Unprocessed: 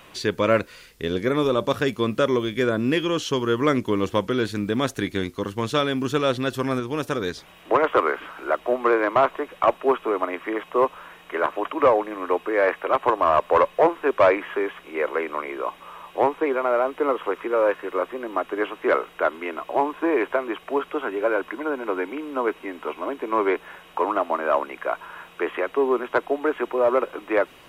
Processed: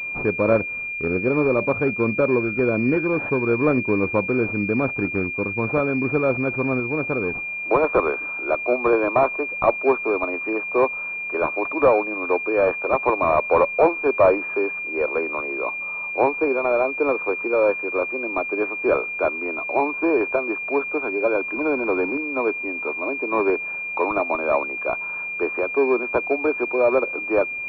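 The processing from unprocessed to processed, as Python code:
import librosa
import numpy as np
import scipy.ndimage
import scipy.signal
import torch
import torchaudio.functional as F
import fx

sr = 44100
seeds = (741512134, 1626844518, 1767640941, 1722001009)

y = fx.power_curve(x, sr, exponent=0.7, at=(21.55, 22.17))
y = fx.pwm(y, sr, carrier_hz=2400.0)
y = F.gain(torch.from_numpy(y), 2.0).numpy()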